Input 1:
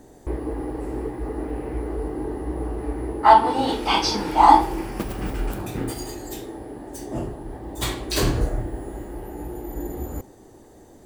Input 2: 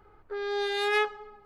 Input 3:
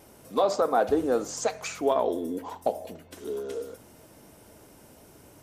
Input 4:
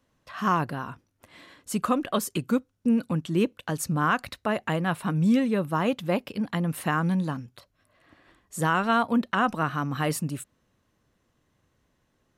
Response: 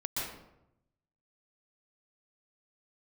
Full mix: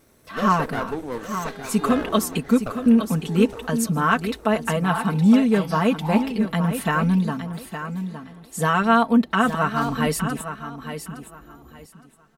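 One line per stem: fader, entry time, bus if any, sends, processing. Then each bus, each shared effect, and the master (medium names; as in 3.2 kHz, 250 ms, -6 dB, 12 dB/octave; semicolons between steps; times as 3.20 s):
-19.5 dB, 1.65 s, no send, no echo send, none
-14.5 dB, 1.00 s, no send, no echo send, none
-4.0 dB, 0.00 s, no send, echo send -11 dB, comb filter that takes the minimum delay 0.49 ms
+2.0 dB, 0.00 s, no send, echo send -9.5 dB, comb 4.5 ms, depth 82%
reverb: none
echo: feedback delay 864 ms, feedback 22%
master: none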